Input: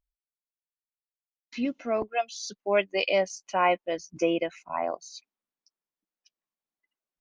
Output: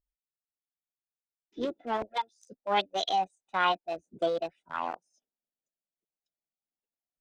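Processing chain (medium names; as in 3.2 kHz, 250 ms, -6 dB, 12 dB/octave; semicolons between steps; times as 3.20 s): local Wiener filter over 41 samples; formant shift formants +5 st; trim -2.5 dB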